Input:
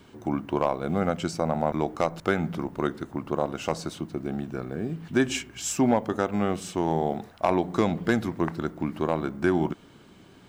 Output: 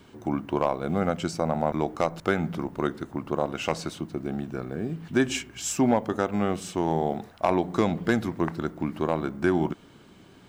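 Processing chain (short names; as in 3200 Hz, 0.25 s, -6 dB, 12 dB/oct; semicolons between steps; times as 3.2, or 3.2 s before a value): 3.46–3.91 dynamic EQ 2400 Hz, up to +6 dB, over -49 dBFS, Q 1.2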